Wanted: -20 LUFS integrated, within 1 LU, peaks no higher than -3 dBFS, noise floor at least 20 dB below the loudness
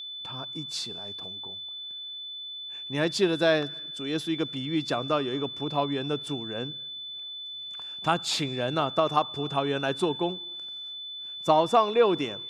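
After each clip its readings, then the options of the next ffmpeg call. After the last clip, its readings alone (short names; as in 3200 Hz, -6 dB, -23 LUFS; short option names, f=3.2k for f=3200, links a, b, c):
steady tone 3500 Hz; tone level -36 dBFS; loudness -28.5 LUFS; peak -8.0 dBFS; loudness target -20.0 LUFS
-> -af "bandreject=f=3.5k:w=30"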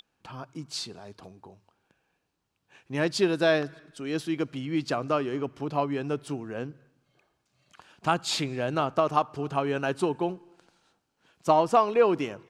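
steady tone none; loudness -27.5 LUFS; peak -8.0 dBFS; loudness target -20.0 LUFS
-> -af "volume=7.5dB,alimiter=limit=-3dB:level=0:latency=1"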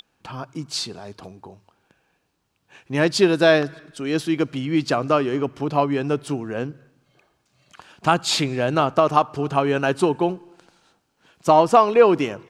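loudness -20.5 LUFS; peak -3.0 dBFS; noise floor -70 dBFS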